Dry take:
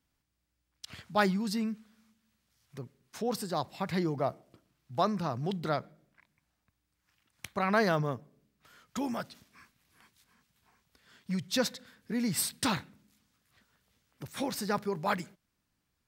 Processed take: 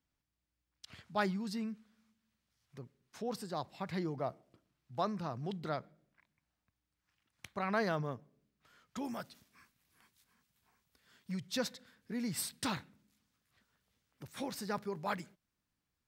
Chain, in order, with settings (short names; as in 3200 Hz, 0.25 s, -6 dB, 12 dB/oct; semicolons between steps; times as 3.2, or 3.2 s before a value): high shelf 9400 Hz -7.5 dB, from 9.05 s +5.5 dB, from 11.32 s -2 dB; gain -6.5 dB